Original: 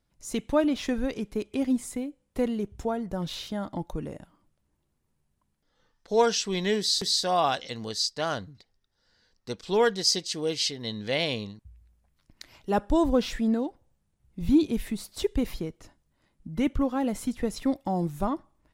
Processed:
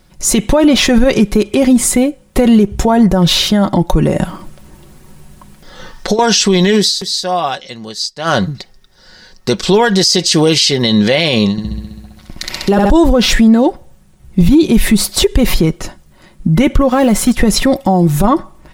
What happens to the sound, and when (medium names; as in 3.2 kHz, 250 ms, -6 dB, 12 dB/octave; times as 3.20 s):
4.16–6.19 s: compressor with a negative ratio -36 dBFS
6.75–8.41 s: dip -18.5 dB, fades 0.17 s
11.51–12.90 s: flutter echo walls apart 11.2 m, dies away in 1.5 s
16.89–17.37 s: companding laws mixed up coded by A
whole clip: comb 5.4 ms, depth 45%; compression, threshold -24 dBFS; loudness maximiser +26.5 dB; trim -1 dB